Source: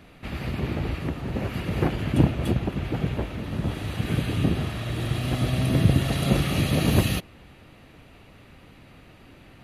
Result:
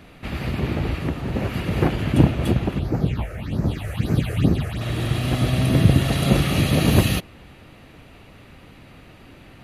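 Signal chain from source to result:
0:02.78–0:04.80: all-pass phaser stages 6, 1.1 Hz → 3.4 Hz, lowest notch 240–3,200 Hz
level +4 dB

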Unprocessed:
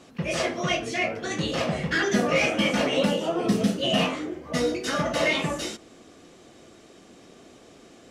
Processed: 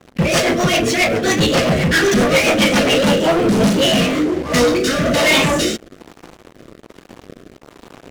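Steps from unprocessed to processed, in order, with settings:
slack as between gear wheels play −48.5 dBFS
leveller curve on the samples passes 5
rotating-speaker cabinet horn 7.5 Hz, later 1.2 Hz, at 0:02.72
level +1.5 dB

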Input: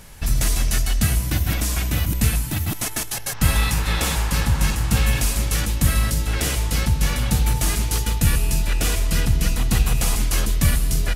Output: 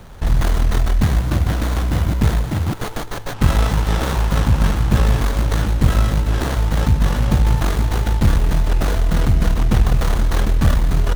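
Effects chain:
tube saturation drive 10 dB, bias 0.35
windowed peak hold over 17 samples
level +7 dB

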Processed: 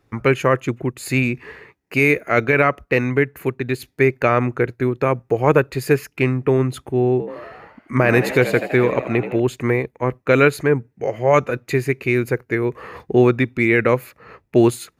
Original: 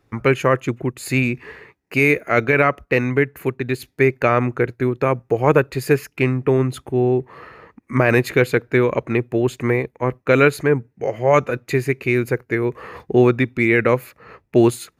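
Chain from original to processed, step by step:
0:07.11–0:09.40: echo with shifted repeats 81 ms, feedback 61%, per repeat +74 Hz, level −11 dB

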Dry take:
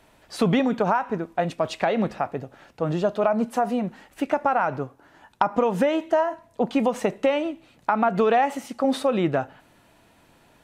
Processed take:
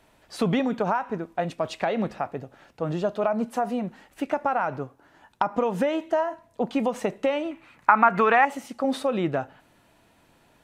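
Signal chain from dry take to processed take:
0:07.51–0:08.45: flat-topped bell 1,500 Hz +11 dB
level −3 dB

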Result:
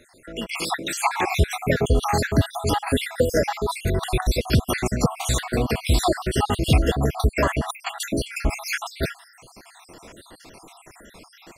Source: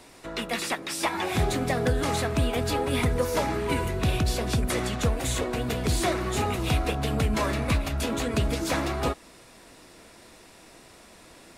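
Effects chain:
time-frequency cells dropped at random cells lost 64%
automatic gain control gain up to 8 dB

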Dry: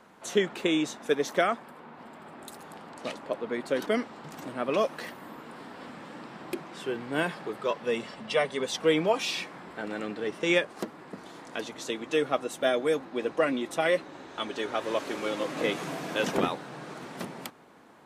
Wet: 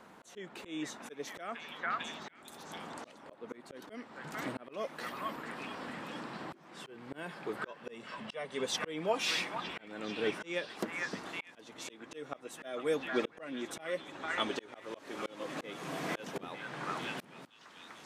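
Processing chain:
echo through a band-pass that steps 449 ms, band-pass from 1,400 Hz, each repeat 0.7 octaves, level −5 dB
volume swells 535 ms

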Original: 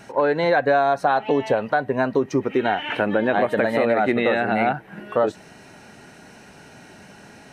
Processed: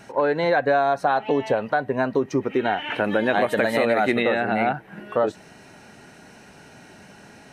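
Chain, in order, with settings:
0:03.04–0:04.23: high-shelf EQ 3,200 Hz +11.5 dB
level −1.5 dB

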